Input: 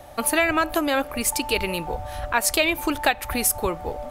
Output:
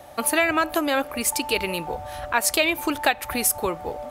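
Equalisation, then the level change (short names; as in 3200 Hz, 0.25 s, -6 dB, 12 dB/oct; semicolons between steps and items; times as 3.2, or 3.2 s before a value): HPF 130 Hz 6 dB/oct; 0.0 dB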